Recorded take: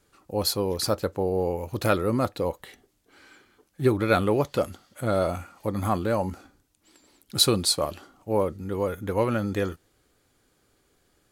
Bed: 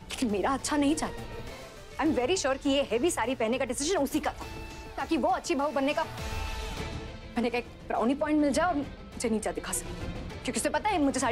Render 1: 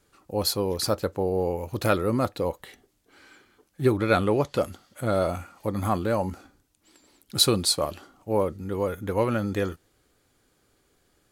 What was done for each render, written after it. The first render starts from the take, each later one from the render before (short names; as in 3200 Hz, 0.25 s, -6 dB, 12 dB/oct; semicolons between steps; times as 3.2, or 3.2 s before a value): 3.97–4.56 LPF 11000 Hz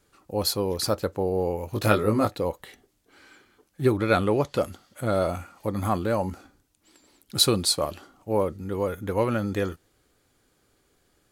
1.71–2.35 doubler 19 ms -3 dB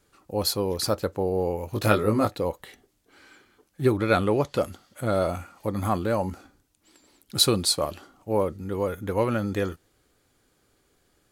nothing audible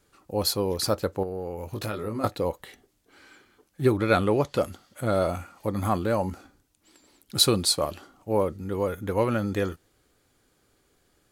1.23–2.24 compressor 4:1, threshold -29 dBFS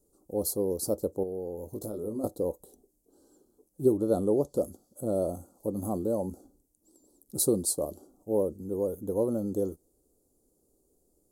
Chebyshev band-stop 460–8900 Hz, order 2; bell 110 Hz -10 dB 1.2 oct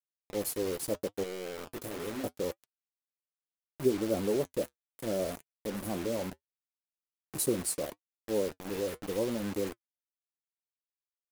bit-crush 6-bit; flange 0.73 Hz, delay 3.2 ms, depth 4.5 ms, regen -63%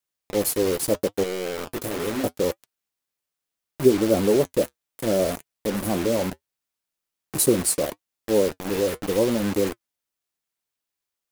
gain +10.5 dB